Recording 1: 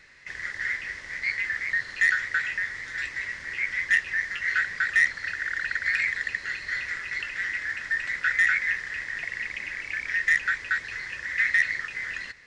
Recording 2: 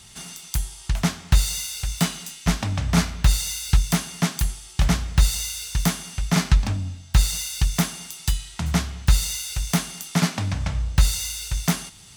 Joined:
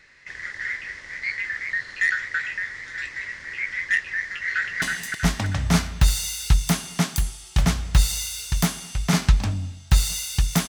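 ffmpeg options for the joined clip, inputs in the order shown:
-filter_complex "[0:a]apad=whole_dur=10.68,atrim=end=10.68,atrim=end=4.822[s0];[1:a]atrim=start=2.048:end=7.91[s1];[s0][s1]acrossfade=d=0.004:c1=hsin:c2=hsin,asplit=2[s2][s3];[s3]afade=t=in:st=4.29:d=0.01,afade=t=out:st=4.82:d=0.01,aecho=0:1:320|640|960|1280|1600|1920:0.707946|0.318576|0.143359|0.0645116|0.0290302|0.0130636[s4];[s2][s4]amix=inputs=2:normalize=0"

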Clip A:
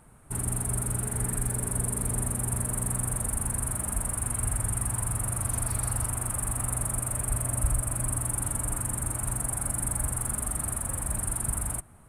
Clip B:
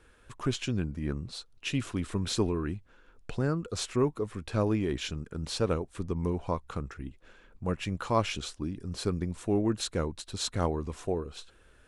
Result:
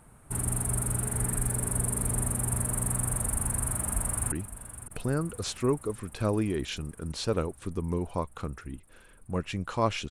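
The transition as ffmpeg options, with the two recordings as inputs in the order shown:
-filter_complex "[0:a]apad=whole_dur=10.1,atrim=end=10.1,atrim=end=4.322[s0];[1:a]atrim=start=2.648:end=8.43[s1];[s0][s1]acrossfade=d=0.004:c1=hsin:c2=hsin,asplit=2[s2][s3];[s3]afade=t=in:st=3.78:d=0.01,afade=t=out:st=4.32:d=0.01,aecho=0:1:560|1120|1680|2240|2800|3360|3920|4480|5040|5600|6160:0.223872|0.167904|0.125928|0.094446|0.0708345|0.0531259|0.0398444|0.0298833|0.0224125|0.0168094|0.012607[s4];[s2][s4]amix=inputs=2:normalize=0"

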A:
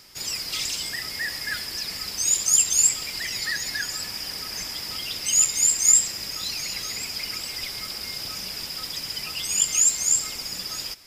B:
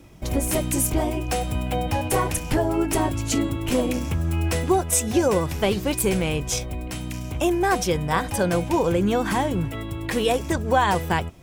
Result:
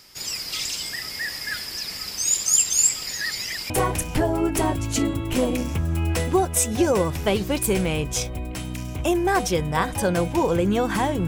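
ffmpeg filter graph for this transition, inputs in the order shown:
-filter_complex "[0:a]apad=whole_dur=11.27,atrim=end=11.27,asplit=2[s0][s1];[s0]atrim=end=3.072[s2];[s1]atrim=start=3.068:end=3.702,asetpts=PTS-STARTPTS,areverse[s3];[1:a]atrim=start=2.058:end=9.63[s4];[s2][s3]acrossfade=d=0.004:c1=hsin:c2=hsin[s5];[s5][s4]acrossfade=d=0.004:c1=hsin:c2=hsin"

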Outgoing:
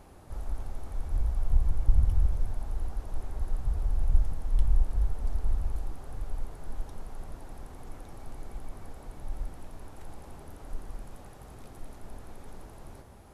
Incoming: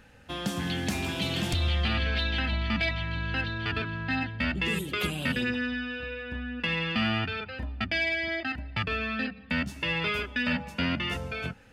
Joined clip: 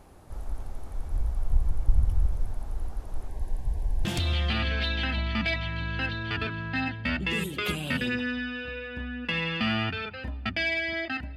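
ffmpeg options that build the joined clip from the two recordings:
-filter_complex "[0:a]asettb=1/sr,asplit=3[s0][s1][s2];[s0]atrim=end=3.284[s3];[s1]atrim=start=3.28:end=4.05,asetpts=PTS-STARTPTS,afade=t=in:d=0.004:c=qsin,afade=t=out:st=0.766:d=0.004:c=qsin,asuperstop=centerf=1300:order=8:qfactor=3.3[s4];[s2]atrim=start=4.046[s5];[s3][s4]acrossfade=d=0.004:c1=hsin:c2=qsin[s6];[s6][s5]acrossfade=d=0.004:c1=qsin:c2=hsin,apad=whole_dur=11.36,atrim=end=11.36,atrim=end=4.052[s7];[1:a]atrim=start=1.398:end=8.71[s8];[s7][s8]acrossfade=d=0.004:c1=hsin:c2=hsin"

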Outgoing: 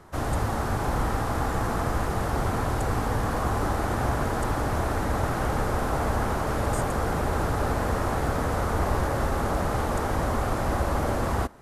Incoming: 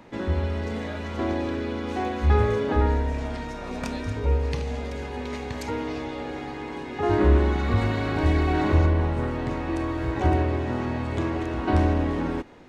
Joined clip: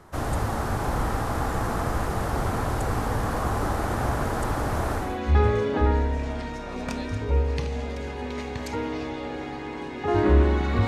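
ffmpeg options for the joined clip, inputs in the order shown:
-filter_complex "[0:a]apad=whole_dur=10.87,atrim=end=10.87,atrim=end=5.22,asetpts=PTS-STARTPTS[s0];[1:a]atrim=start=1.89:end=7.82,asetpts=PTS-STARTPTS[s1];[s0][s1]acrossfade=d=0.28:c1=tri:c2=tri"

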